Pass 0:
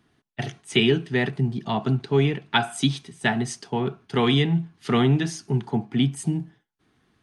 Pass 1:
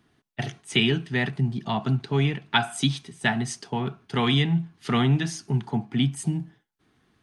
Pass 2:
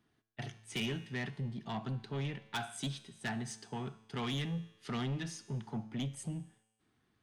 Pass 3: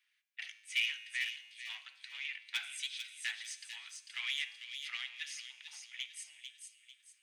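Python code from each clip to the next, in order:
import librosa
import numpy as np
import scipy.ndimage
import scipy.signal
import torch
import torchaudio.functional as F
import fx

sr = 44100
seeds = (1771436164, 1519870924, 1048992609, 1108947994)

y1 = fx.dynamic_eq(x, sr, hz=410.0, q=1.4, threshold_db=-36.0, ratio=4.0, max_db=-7)
y2 = 10.0 ** (-21.0 / 20.0) * np.tanh(y1 / 10.0 ** (-21.0 / 20.0))
y2 = fx.comb_fb(y2, sr, f0_hz=110.0, decay_s=1.2, harmonics='all', damping=0.0, mix_pct=60)
y2 = y2 * 10.0 ** (-3.5 / 20.0)
y3 = fx.ladder_highpass(y2, sr, hz=2000.0, resonance_pct=60)
y3 = fx.echo_wet_highpass(y3, sr, ms=446, feedback_pct=37, hz=3100.0, wet_db=-4)
y3 = y3 * 10.0 ** (10.5 / 20.0)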